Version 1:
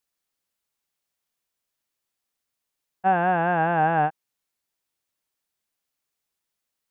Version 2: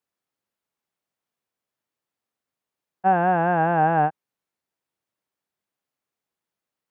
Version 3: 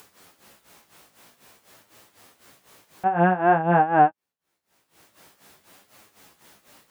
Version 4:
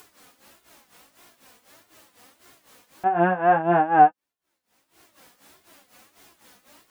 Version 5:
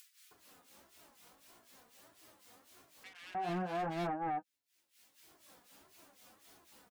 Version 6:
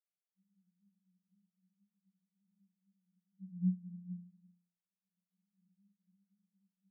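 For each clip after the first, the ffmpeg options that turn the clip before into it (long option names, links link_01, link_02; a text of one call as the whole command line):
ffmpeg -i in.wav -af "highpass=95,highshelf=frequency=2300:gain=-12,volume=3dB" out.wav
ffmpeg -i in.wav -af "flanger=delay=9.4:depth=9.4:regen=15:speed=0.5:shape=sinusoidal,tremolo=f=4:d=0.82,acompressor=mode=upward:threshold=-36dB:ratio=2.5,volume=8dB" out.wav
ffmpeg -i in.wav -af "flanger=delay=2.8:depth=1.3:regen=30:speed=1.6:shape=sinusoidal,volume=3.5dB" out.wav
ffmpeg -i in.wav -filter_complex "[0:a]acrossover=split=360|3000[link_01][link_02][link_03];[link_02]acompressor=threshold=-31dB:ratio=2[link_04];[link_01][link_04][link_03]amix=inputs=3:normalize=0,asoftclip=type=hard:threshold=-26.5dB,acrossover=split=1900[link_05][link_06];[link_05]adelay=310[link_07];[link_07][link_06]amix=inputs=2:normalize=0,volume=-7dB" out.wav
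ffmpeg -i in.wav -af "asuperpass=centerf=190:order=20:qfactor=6.3,volume=8dB" out.wav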